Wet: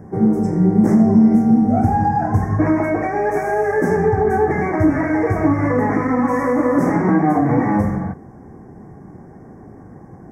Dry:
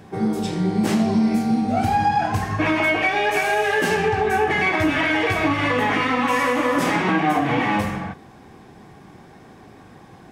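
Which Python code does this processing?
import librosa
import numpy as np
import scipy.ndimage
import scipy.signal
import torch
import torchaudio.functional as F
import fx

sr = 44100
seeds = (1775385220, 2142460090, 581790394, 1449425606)

y = scipy.signal.sosfilt(scipy.signal.ellip(3, 1.0, 60, [2000.0, 5600.0], 'bandstop', fs=sr, output='sos'), x)
y = fx.tilt_shelf(y, sr, db=8.0, hz=970.0)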